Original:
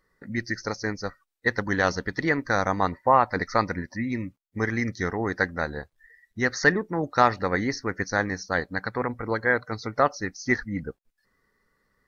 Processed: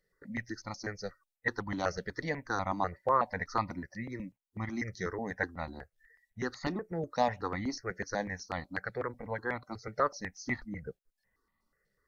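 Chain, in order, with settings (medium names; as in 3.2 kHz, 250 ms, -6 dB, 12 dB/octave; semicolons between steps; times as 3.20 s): stepped phaser 8.1 Hz 280–1600 Hz; trim -5.5 dB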